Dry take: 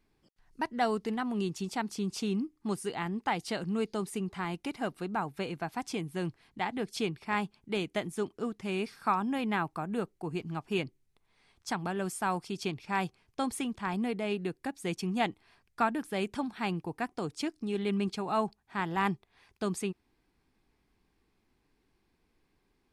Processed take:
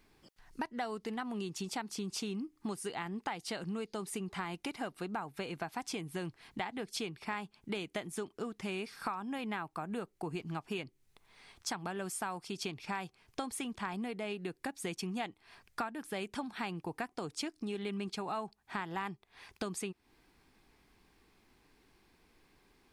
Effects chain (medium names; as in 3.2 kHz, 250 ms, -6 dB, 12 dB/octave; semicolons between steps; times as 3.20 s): bass shelf 450 Hz -5.5 dB; compression 6:1, threshold -46 dBFS, peak gain reduction 20.5 dB; trim +9.5 dB